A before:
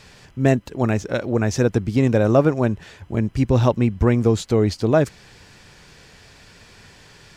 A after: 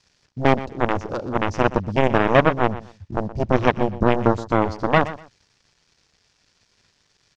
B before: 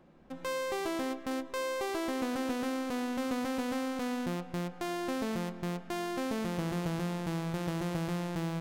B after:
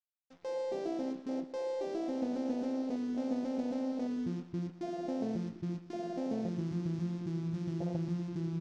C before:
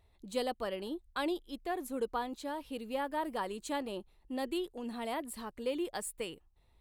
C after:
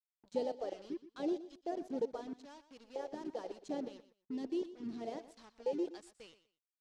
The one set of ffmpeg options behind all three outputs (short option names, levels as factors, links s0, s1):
-filter_complex "[0:a]aeval=exprs='0.794*(cos(1*acos(clip(val(0)/0.794,-1,1)))-cos(1*PI/2))+0.224*(cos(7*acos(clip(val(0)/0.794,-1,1)))-cos(7*PI/2))':c=same,acrusher=bits=6:mix=0:aa=0.5,afwtdn=0.0447,lowpass=f=5700:t=q:w=2.2,asplit=2[s0][s1];[s1]aecho=0:1:122|244:0.178|0.0373[s2];[s0][s2]amix=inputs=2:normalize=0"